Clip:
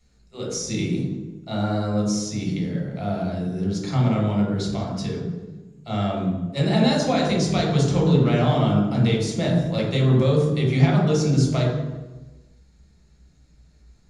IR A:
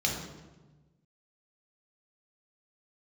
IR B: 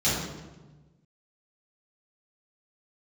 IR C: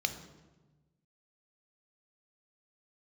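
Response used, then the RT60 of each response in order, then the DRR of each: A; 1.2 s, 1.2 s, 1.2 s; -1.0 dB, -11.0 dB, 8.0 dB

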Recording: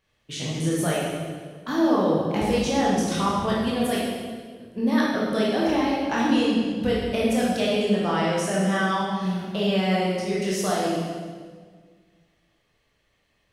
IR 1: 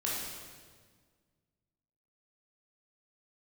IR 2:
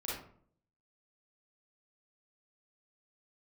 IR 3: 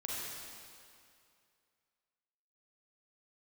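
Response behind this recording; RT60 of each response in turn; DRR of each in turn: 1; 1.6 s, 0.55 s, 2.4 s; -6.0 dB, -7.0 dB, -5.5 dB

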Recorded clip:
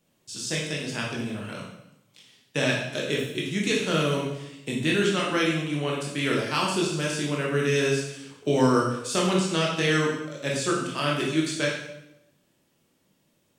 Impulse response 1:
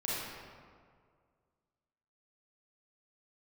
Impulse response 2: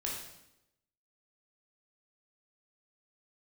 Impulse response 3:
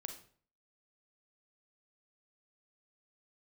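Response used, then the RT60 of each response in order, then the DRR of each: 2; 2.0 s, 0.85 s, 0.50 s; -8.0 dB, -3.5 dB, 5.5 dB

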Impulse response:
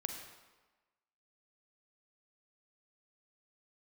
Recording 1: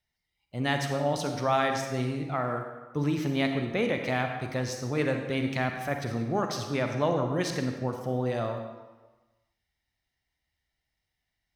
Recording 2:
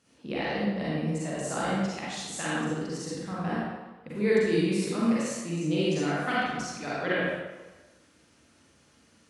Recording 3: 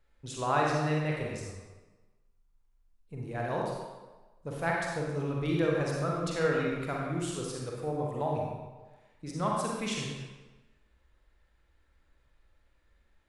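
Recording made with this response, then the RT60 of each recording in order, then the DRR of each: 1; 1.2 s, 1.2 s, 1.2 s; 4.0 dB, -8.5 dB, -2.5 dB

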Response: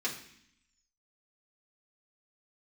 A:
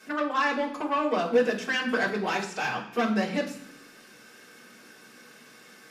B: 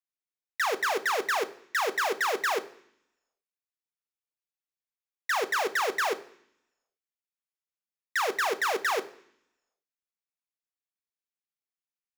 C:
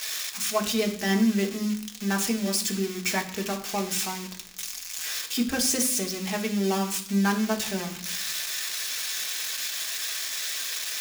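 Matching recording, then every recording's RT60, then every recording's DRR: A; 0.65 s, 0.65 s, 0.65 s; -5.5 dB, 9.5 dB, 2.0 dB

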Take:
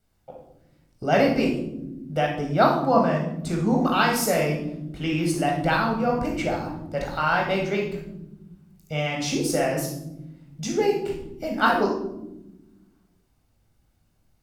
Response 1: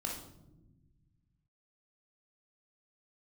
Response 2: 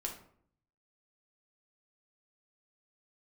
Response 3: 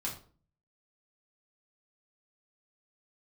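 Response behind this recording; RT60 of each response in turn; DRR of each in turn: 1; no single decay rate, 0.60 s, 0.45 s; -1.5 dB, -0.5 dB, -3.5 dB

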